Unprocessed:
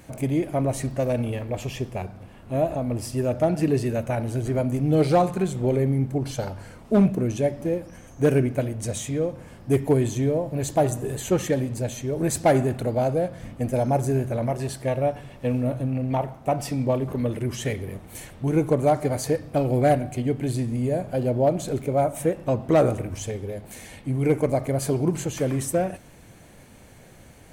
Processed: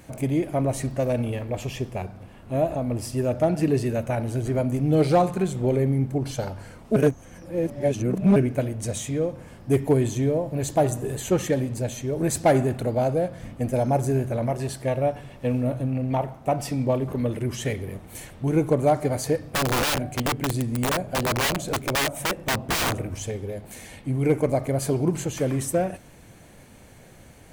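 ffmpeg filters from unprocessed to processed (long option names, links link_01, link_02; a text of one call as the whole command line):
ffmpeg -i in.wav -filter_complex "[0:a]asettb=1/sr,asplit=3[link_01][link_02][link_03];[link_01]atrim=end=19.384[link_04];[link_02]atrim=start=19.38:end=22.94,asetpts=PTS-STARTPTS,afade=type=in:duration=0.004:curve=qsin,afade=type=out:start_time=3.556:duration=0.004:curve=qsin,aeval=exprs='(mod(8.41*val(0)+1,2)-1)/8.41':channel_layout=same[link_05];[link_03]atrim=start=22.936[link_06];[link_04][link_05]acrossfade=duration=0.004:curve1=hsin:curve2=qsin[link_07];[link_07][link_06]acrossfade=duration=0.004:curve1=qsin:curve2=hsin,asplit=3[link_08][link_09][link_10];[link_08]atrim=end=6.962[link_11];[link_09]atrim=start=6.958:end=8.362,asetpts=PTS-STARTPTS,areverse[link_12];[link_10]atrim=start=8.358[link_13];[link_11][link_12]acrossfade=duration=0.004:curve1=hsin:curve2=hsin[link_14];[link_14][link_13]acrossfade=duration=0.004:curve1=hsin:curve2=hsin" out.wav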